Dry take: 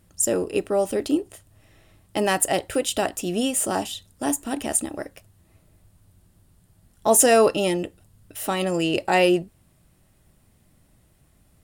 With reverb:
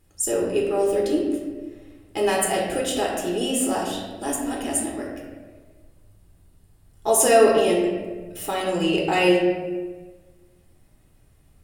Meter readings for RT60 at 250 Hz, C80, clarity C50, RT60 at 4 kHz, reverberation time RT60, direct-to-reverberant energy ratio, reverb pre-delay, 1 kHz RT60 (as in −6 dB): 1.6 s, 4.0 dB, 2.0 dB, 0.85 s, 1.4 s, −3.0 dB, 3 ms, 1.2 s